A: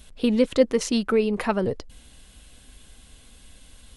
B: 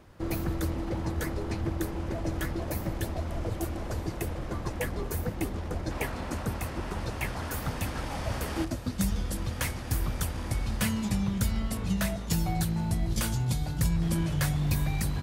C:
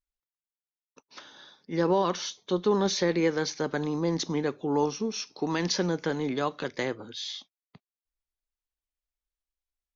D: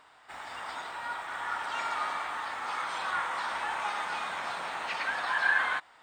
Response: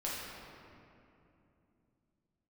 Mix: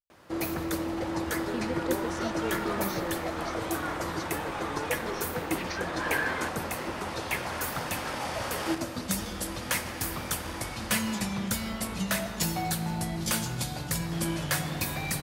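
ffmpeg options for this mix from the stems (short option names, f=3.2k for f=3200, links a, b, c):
-filter_complex "[0:a]adelay=1300,volume=-15dB[a];[1:a]highpass=f=450:p=1,adelay=100,volume=2.5dB,asplit=2[b][c];[c]volume=-9dB[d];[2:a]volume=-13dB[e];[3:a]adelay=700,volume=-5dB[f];[4:a]atrim=start_sample=2205[g];[d][g]afir=irnorm=-1:irlink=0[h];[a][b][e][f][h]amix=inputs=5:normalize=0"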